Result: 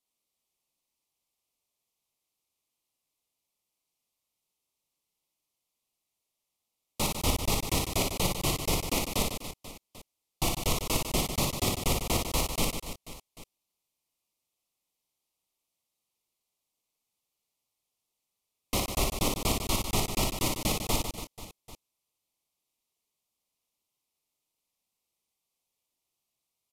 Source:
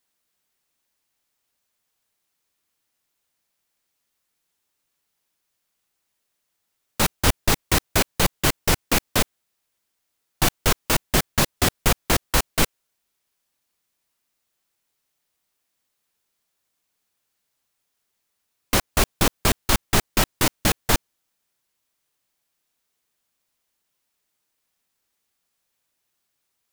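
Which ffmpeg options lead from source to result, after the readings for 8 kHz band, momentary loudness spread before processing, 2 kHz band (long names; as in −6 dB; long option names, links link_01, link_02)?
−6.5 dB, 3 LU, −11.5 dB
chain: -af "asuperstop=centerf=1600:order=4:qfactor=1.7,aecho=1:1:60|150|285|487.5|791.2:0.631|0.398|0.251|0.158|0.1,aresample=32000,aresample=44100,volume=-8.5dB"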